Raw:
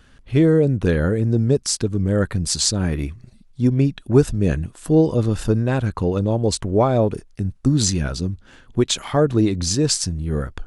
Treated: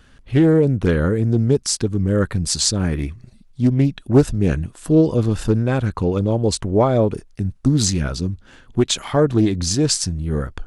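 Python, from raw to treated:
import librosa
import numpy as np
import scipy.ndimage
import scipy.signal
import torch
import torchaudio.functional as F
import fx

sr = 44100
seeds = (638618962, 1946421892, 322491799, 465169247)

y = fx.doppler_dist(x, sr, depth_ms=0.23)
y = y * 10.0 ** (1.0 / 20.0)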